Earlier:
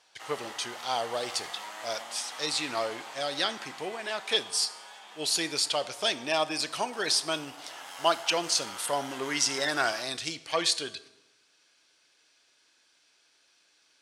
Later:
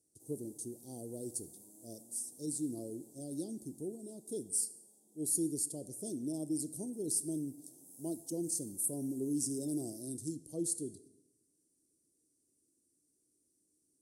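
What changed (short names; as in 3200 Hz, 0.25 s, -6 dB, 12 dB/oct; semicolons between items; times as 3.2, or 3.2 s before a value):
speech +3.5 dB; master: add Chebyshev band-stop 320–9400 Hz, order 3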